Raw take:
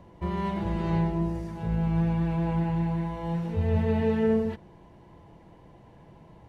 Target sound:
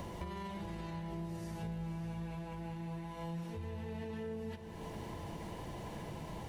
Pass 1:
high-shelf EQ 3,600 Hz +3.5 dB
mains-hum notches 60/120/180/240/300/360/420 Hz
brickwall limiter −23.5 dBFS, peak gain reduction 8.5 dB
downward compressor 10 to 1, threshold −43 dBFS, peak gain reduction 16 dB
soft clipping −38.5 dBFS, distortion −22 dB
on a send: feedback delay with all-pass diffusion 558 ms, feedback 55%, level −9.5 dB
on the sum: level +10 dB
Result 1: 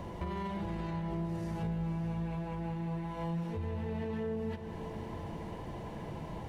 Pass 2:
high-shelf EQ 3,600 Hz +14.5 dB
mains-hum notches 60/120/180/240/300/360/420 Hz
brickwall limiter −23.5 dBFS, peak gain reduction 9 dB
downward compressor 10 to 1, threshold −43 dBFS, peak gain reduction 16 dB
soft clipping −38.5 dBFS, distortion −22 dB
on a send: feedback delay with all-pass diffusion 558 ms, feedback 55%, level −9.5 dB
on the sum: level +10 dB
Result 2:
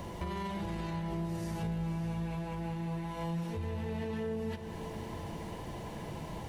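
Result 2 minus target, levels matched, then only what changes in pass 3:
downward compressor: peak gain reduction −6.5 dB
change: downward compressor 10 to 1, threshold −50.5 dBFS, peak gain reduction 22.5 dB

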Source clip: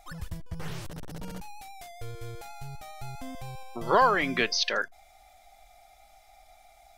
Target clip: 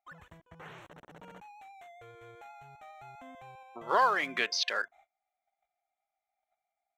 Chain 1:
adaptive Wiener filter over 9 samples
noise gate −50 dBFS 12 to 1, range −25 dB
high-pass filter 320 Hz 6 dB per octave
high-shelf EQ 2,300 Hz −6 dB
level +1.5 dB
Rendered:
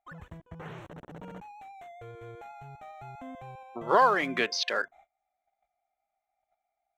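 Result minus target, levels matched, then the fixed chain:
250 Hz band +6.5 dB
adaptive Wiener filter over 9 samples
noise gate −50 dBFS 12 to 1, range −25 dB
high-pass filter 1,200 Hz 6 dB per octave
high-shelf EQ 2,300 Hz −6 dB
level +1.5 dB

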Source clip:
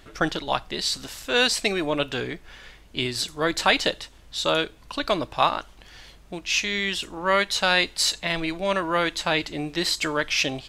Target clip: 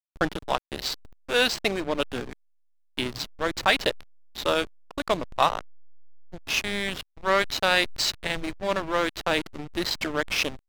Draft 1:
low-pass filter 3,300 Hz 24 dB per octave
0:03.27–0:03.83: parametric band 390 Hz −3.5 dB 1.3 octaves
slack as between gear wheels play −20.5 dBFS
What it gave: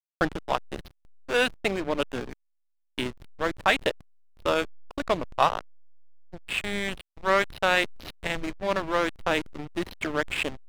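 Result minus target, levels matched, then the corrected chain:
8,000 Hz band −5.5 dB
low-pass filter 7,600 Hz 24 dB per octave
0:03.27–0:03.83: parametric band 390 Hz −3.5 dB 1.3 octaves
slack as between gear wheels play −20.5 dBFS

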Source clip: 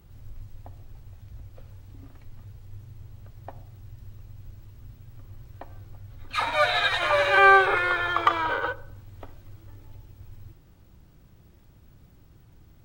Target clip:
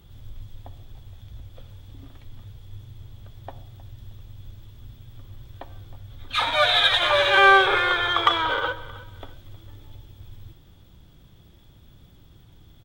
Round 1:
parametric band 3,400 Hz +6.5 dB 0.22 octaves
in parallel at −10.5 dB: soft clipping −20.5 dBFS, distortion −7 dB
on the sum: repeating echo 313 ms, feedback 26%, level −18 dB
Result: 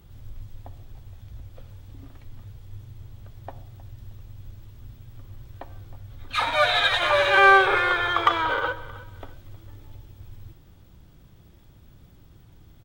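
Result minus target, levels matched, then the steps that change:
4,000 Hz band −4.5 dB
change: parametric band 3,400 Hz +16.5 dB 0.22 octaves

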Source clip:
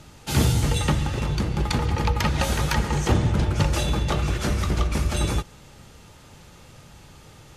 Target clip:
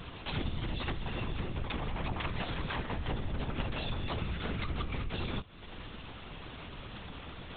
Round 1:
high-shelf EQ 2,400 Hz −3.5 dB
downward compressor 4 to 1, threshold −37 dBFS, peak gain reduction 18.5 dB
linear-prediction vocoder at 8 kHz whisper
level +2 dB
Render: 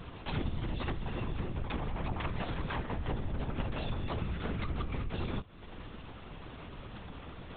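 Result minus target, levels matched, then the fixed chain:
4,000 Hz band −5.0 dB
high-shelf EQ 2,400 Hz +6.5 dB
downward compressor 4 to 1, threshold −37 dBFS, peak gain reduction 18.5 dB
linear-prediction vocoder at 8 kHz whisper
level +2 dB

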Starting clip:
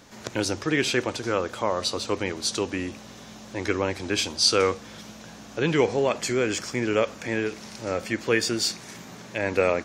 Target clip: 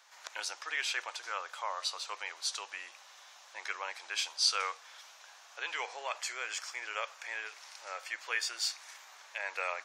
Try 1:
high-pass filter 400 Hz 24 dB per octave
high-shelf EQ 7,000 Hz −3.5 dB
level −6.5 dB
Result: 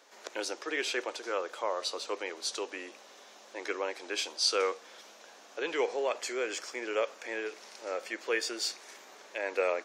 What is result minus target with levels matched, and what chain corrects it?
500 Hz band +13.0 dB
high-pass filter 820 Hz 24 dB per octave
high-shelf EQ 7,000 Hz −3.5 dB
level −6.5 dB

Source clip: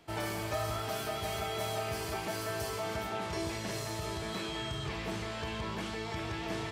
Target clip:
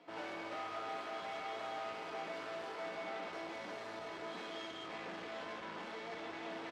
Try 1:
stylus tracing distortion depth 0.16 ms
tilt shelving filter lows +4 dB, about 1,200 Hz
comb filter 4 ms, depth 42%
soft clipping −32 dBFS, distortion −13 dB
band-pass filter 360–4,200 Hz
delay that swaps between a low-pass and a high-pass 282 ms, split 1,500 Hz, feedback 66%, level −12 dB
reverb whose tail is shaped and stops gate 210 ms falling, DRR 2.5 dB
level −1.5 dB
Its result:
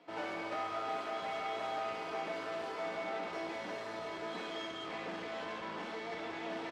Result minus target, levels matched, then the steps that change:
soft clipping: distortion −6 dB
change: soft clipping −39.5 dBFS, distortion −7 dB

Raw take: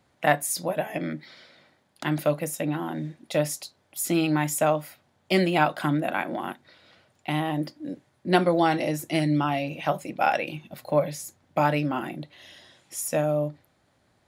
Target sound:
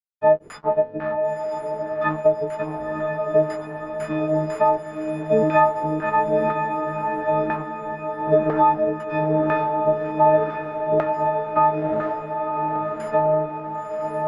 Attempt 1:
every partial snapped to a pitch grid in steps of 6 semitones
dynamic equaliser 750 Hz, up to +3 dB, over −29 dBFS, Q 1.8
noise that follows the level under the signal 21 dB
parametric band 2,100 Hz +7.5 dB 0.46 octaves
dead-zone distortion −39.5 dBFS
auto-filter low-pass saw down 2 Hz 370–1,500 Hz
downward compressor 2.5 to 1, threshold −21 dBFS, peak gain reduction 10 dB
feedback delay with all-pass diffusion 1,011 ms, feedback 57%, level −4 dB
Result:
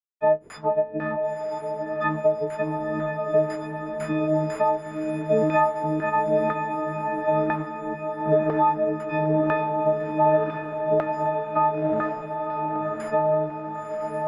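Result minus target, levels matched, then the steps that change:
dead-zone distortion: distortion −8 dB; downward compressor: peak gain reduction +4.5 dB
change: dead-zone distortion −31 dBFS
change: downward compressor 2.5 to 1, threshold −14 dBFS, peak gain reduction 6 dB

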